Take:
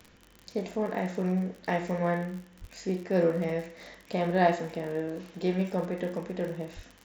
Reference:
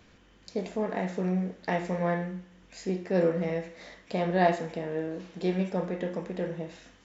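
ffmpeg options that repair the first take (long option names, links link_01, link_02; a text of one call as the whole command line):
ffmpeg -i in.wav -filter_complex "[0:a]adeclick=threshold=4,asplit=3[link_01][link_02][link_03];[link_01]afade=type=out:start_time=2.6:duration=0.02[link_04];[link_02]highpass=frequency=140:width=0.5412,highpass=frequency=140:width=1.3066,afade=type=in:start_time=2.6:duration=0.02,afade=type=out:start_time=2.72:duration=0.02[link_05];[link_03]afade=type=in:start_time=2.72:duration=0.02[link_06];[link_04][link_05][link_06]amix=inputs=3:normalize=0,asplit=3[link_07][link_08][link_09];[link_07]afade=type=out:start_time=6.75:duration=0.02[link_10];[link_08]highpass=frequency=140:width=0.5412,highpass=frequency=140:width=1.3066,afade=type=in:start_time=6.75:duration=0.02,afade=type=out:start_time=6.87:duration=0.02[link_11];[link_09]afade=type=in:start_time=6.87:duration=0.02[link_12];[link_10][link_11][link_12]amix=inputs=3:normalize=0" out.wav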